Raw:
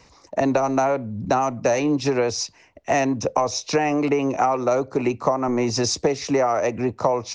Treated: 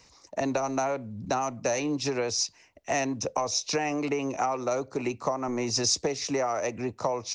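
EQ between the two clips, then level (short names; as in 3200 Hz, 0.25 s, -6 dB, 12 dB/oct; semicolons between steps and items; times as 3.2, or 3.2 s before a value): high shelf 3300 Hz +10.5 dB; -8.5 dB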